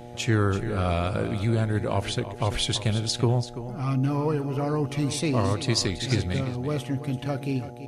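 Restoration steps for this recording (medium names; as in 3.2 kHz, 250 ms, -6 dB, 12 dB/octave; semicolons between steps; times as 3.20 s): de-hum 120.2 Hz, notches 7; inverse comb 335 ms -12 dB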